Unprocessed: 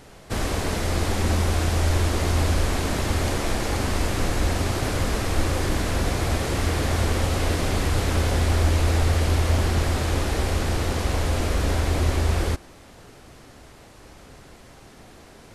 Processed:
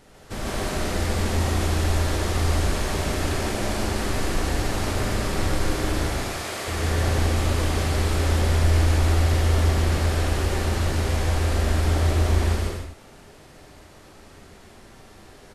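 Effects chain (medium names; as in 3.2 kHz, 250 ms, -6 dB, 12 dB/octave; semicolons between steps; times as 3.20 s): 6.07–6.68 s: high-pass 700 Hz 6 dB/octave; on a send: loudspeakers at several distances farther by 50 m 0 dB, 77 m -5 dB; on the sum: gated-style reverb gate 180 ms flat, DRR 1 dB; trim -6.5 dB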